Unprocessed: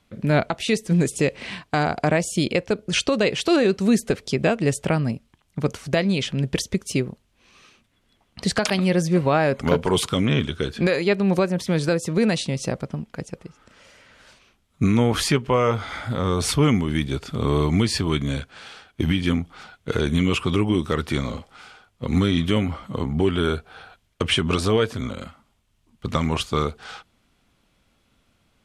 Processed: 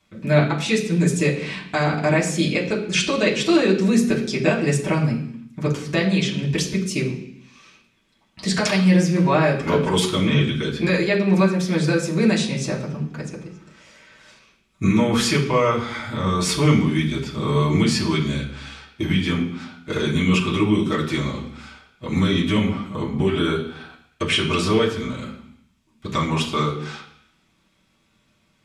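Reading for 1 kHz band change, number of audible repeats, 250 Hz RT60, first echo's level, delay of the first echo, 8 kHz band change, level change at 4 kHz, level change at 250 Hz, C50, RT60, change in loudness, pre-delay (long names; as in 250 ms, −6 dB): +1.5 dB, no echo audible, 0.85 s, no echo audible, no echo audible, +1.5 dB, +2.0 dB, +2.5 dB, 8.0 dB, 0.65 s, +2.0 dB, 3 ms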